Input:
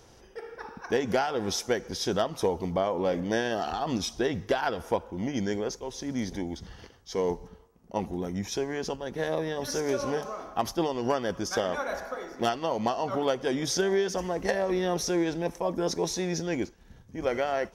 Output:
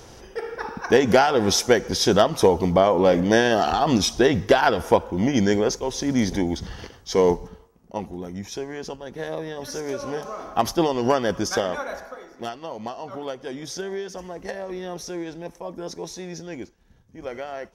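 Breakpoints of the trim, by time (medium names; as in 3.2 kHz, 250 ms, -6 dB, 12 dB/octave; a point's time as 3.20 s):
7.27 s +10 dB
8.10 s -1 dB
10.05 s -1 dB
10.58 s +7 dB
11.42 s +7 dB
12.30 s -5 dB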